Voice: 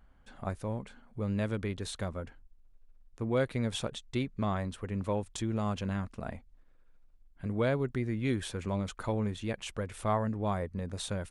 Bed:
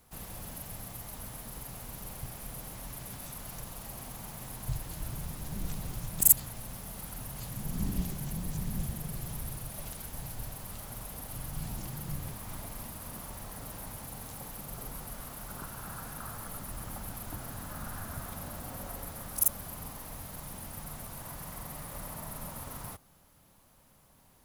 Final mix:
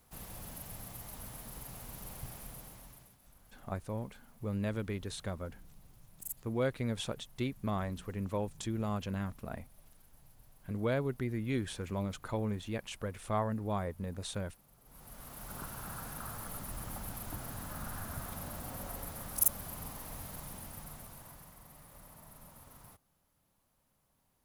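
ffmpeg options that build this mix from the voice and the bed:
ffmpeg -i stem1.wav -i stem2.wav -filter_complex "[0:a]adelay=3250,volume=-3dB[link_01];[1:a]volume=17dB,afade=type=out:start_time=2.32:duration=0.84:silence=0.11885,afade=type=in:start_time=14.84:duration=0.76:silence=0.0944061,afade=type=out:start_time=20.28:duration=1.27:silence=0.251189[link_02];[link_01][link_02]amix=inputs=2:normalize=0" out.wav

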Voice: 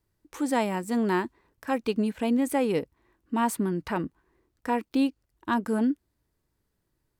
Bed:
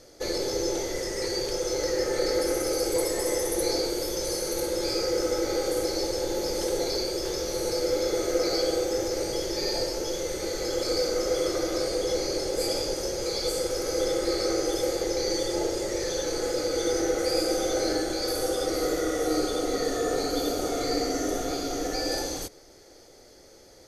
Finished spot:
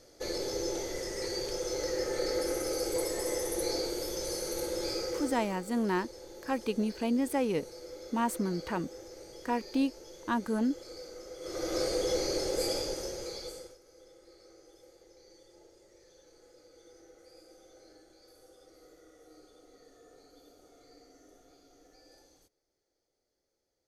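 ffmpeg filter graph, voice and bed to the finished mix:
ffmpeg -i stem1.wav -i stem2.wav -filter_complex "[0:a]adelay=4800,volume=-4.5dB[link_01];[1:a]volume=10.5dB,afade=type=out:start_time=4.88:duration=0.68:silence=0.211349,afade=type=in:start_time=11.4:duration=0.4:silence=0.149624,afade=type=out:start_time=12.54:duration=1.24:silence=0.0398107[link_02];[link_01][link_02]amix=inputs=2:normalize=0" out.wav

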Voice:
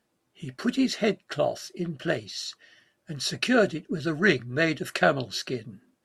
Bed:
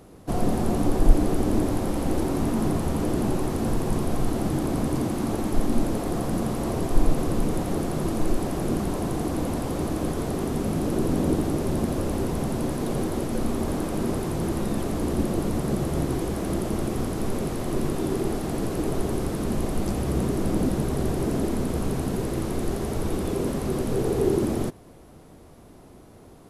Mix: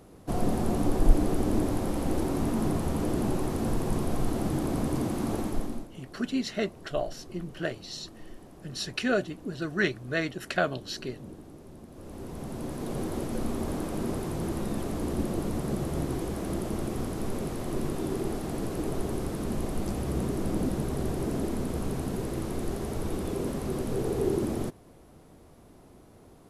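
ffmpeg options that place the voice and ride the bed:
ffmpeg -i stem1.wav -i stem2.wav -filter_complex "[0:a]adelay=5550,volume=-5dB[link_01];[1:a]volume=14dB,afade=type=out:start_time=5.38:duration=0.5:silence=0.112202,afade=type=in:start_time=11.91:duration=1.25:silence=0.133352[link_02];[link_01][link_02]amix=inputs=2:normalize=0" out.wav

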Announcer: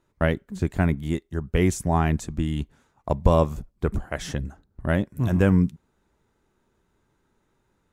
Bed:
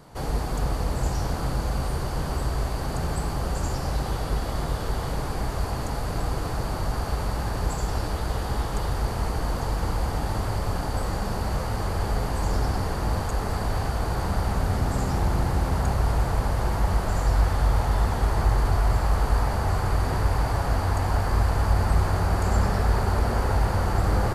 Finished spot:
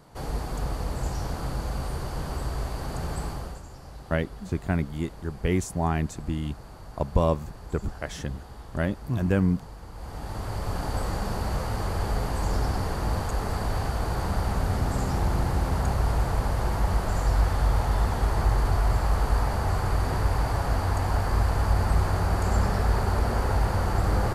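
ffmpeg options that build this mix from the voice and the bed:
ffmpeg -i stem1.wav -i stem2.wav -filter_complex "[0:a]adelay=3900,volume=-4dB[link_01];[1:a]volume=11dB,afade=type=out:start_time=3.25:duration=0.38:silence=0.237137,afade=type=in:start_time=9.92:duration=0.98:silence=0.177828[link_02];[link_01][link_02]amix=inputs=2:normalize=0" out.wav

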